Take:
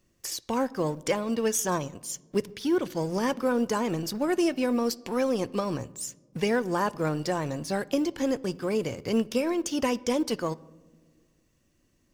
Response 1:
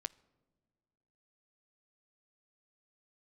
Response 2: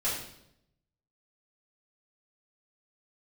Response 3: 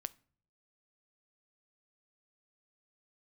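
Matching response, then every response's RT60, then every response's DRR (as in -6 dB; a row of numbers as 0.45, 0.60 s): 1; not exponential, 0.75 s, not exponential; 17.5, -10.0, 16.0 dB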